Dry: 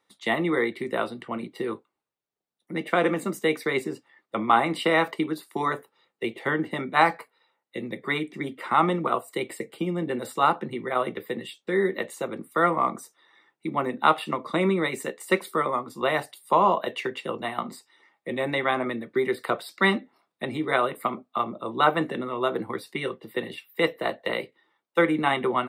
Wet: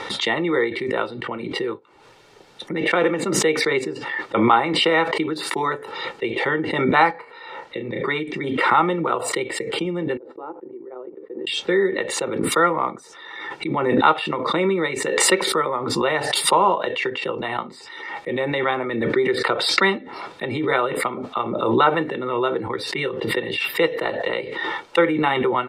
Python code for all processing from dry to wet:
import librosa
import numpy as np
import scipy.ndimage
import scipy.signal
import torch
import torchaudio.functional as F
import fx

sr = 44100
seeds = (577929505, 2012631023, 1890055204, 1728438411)

y = fx.chain(x, sr, fx.peak_eq(hz=12000.0, db=-8.0, octaves=2.0),
    fx.doubler(ms=34.0, db=-8), at=(7.11, 8.08))
y = fx.chain(y, sr, fx.law_mismatch(coded='A'),
    fx.ladder_bandpass(hz=380.0, resonance_pct=55),
    fx.upward_expand(threshold_db=-56.0, expansion=1.5), at=(10.17, 11.47))
y = scipy.signal.sosfilt(scipy.signal.butter(2, 4900.0, 'lowpass', fs=sr, output='sos'), y)
y = y + 0.42 * np.pad(y, (int(2.2 * sr / 1000.0), 0))[:len(y)]
y = fx.pre_swell(y, sr, db_per_s=36.0)
y = y * librosa.db_to_amplitude(2.0)